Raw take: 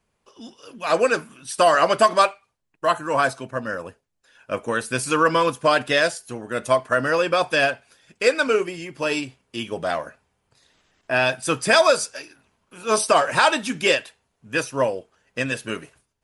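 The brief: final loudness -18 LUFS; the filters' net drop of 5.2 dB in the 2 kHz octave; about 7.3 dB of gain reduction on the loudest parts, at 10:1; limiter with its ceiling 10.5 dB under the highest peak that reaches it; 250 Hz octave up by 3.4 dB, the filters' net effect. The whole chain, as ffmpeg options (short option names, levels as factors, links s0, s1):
-af "equalizer=f=250:t=o:g=4.5,equalizer=f=2000:t=o:g=-7.5,acompressor=threshold=0.112:ratio=10,volume=4.47,alimiter=limit=0.422:level=0:latency=1"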